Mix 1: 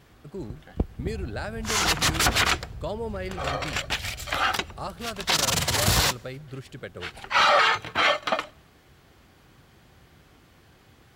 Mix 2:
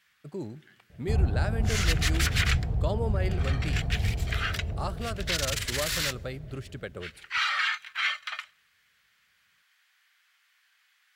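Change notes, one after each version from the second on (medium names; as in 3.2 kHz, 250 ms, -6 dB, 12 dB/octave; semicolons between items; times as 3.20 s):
first sound: add ladder high-pass 1.4 kHz, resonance 35%; second sound +11.5 dB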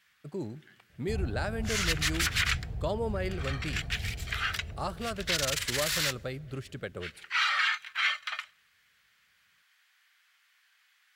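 second sound -9.0 dB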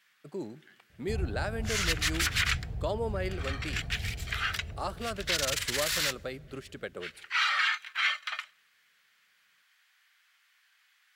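speech: add high-pass 210 Hz 12 dB/octave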